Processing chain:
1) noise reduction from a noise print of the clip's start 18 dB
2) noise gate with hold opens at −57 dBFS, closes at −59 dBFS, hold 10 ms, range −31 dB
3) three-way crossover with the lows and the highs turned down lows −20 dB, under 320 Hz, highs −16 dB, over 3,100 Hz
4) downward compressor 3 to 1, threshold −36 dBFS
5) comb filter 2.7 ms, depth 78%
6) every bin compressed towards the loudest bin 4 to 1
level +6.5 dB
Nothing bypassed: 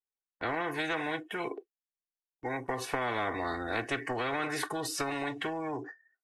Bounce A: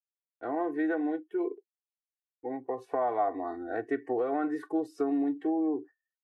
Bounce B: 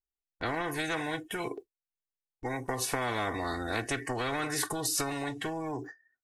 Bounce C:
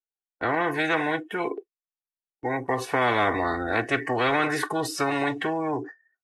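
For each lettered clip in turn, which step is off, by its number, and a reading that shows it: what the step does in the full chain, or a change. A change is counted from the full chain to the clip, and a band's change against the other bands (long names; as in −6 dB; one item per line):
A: 6, 125 Hz band −15.5 dB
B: 3, 8 kHz band +8.0 dB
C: 4, change in momentary loudness spread +2 LU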